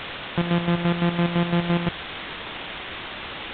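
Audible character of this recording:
a buzz of ramps at a fixed pitch in blocks of 256 samples
chopped level 5.9 Hz, depth 65%, duty 45%
a quantiser's noise floor 6 bits, dither triangular
mu-law

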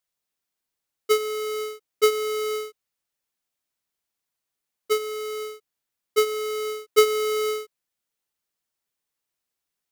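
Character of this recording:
background noise floor −85 dBFS
spectral slope −1.0 dB per octave

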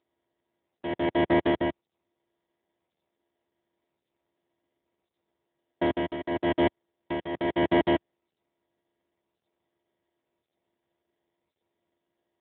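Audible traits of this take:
a buzz of ramps at a fixed pitch in blocks of 128 samples
tremolo triangle 0.93 Hz, depth 80%
aliases and images of a low sample rate 1,300 Hz, jitter 0%
AMR narrowband

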